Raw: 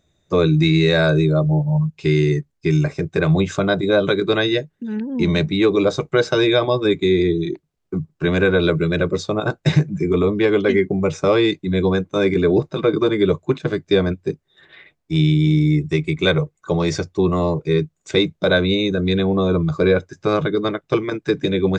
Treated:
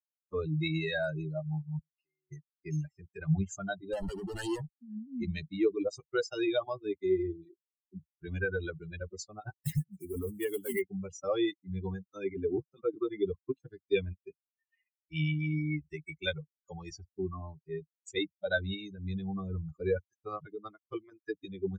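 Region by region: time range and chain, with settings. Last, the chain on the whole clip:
1.79–2.32 bell 110 Hz -8 dB 0.68 oct + compressor 3:1, threshold -38 dBFS + LPF 5100 Hz
3.93–4.7 tilt -2 dB/oct + compressor 16:1, threshold -23 dBFS + sample leveller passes 5
9.61–10.82 block floating point 5-bit + hard clip -11.5 dBFS
13.95–15.91 bell 2600 Hz +10.5 dB 0.54 oct + notch 750 Hz, Q 6.8
16.9–17.64 LPF 3000 Hz 6 dB/oct + notch comb 490 Hz
whole clip: per-bin expansion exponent 3; ten-band EQ 125 Hz -10 dB, 250 Hz -9 dB, 500 Hz -5 dB, 1000 Hz -12 dB, 2000 Hz -3 dB, 4000 Hz -11 dB; gain +2 dB

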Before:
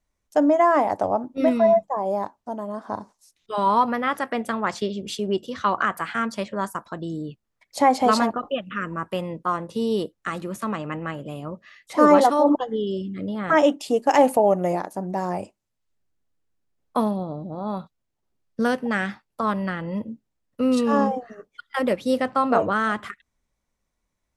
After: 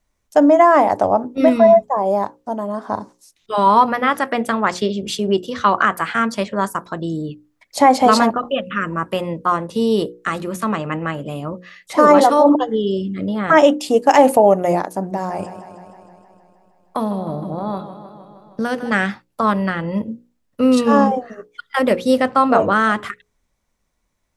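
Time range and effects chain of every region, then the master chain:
15.03–18.92 compressor 2.5:1, threshold -26 dBFS + warbling echo 0.156 s, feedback 70%, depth 63 cents, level -11.5 dB
whole clip: notches 60/120/180/240/300/360/420/480/540 Hz; maximiser +8 dB; gain -1 dB

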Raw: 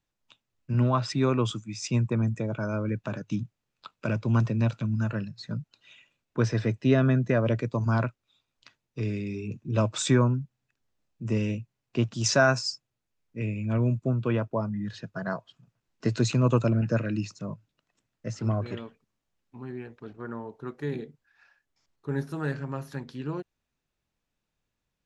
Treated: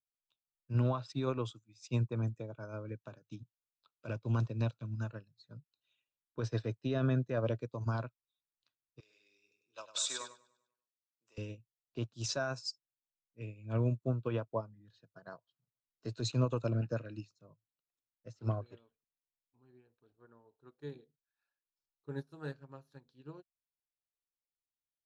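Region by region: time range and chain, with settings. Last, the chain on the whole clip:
9–11.38 HPF 910 Hz + high shelf 4000 Hz +8 dB + feedback echo 99 ms, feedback 45%, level -5 dB
whole clip: limiter -18 dBFS; thirty-one-band EQ 200 Hz -10 dB, 500 Hz +3 dB, 2000 Hz -8 dB, 4000 Hz +7 dB; upward expander 2.5:1, over -39 dBFS; gain -3 dB

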